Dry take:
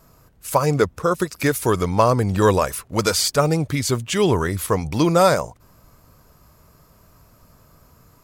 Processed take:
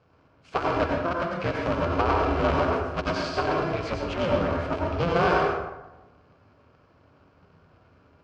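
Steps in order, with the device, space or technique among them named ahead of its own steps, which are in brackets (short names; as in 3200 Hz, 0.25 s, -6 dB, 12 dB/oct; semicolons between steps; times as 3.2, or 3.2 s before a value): high shelf 12000 Hz -10 dB; ring modulator pedal into a guitar cabinet (polarity switched at an audio rate 170 Hz; speaker cabinet 75–3900 Hz, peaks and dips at 82 Hz +7 dB, 210 Hz -8 dB, 320 Hz -8 dB, 860 Hz -6 dB, 1900 Hz -9 dB, 3600 Hz -8 dB); plate-style reverb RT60 1 s, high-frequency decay 0.55×, pre-delay 80 ms, DRR -1.5 dB; gain -6.5 dB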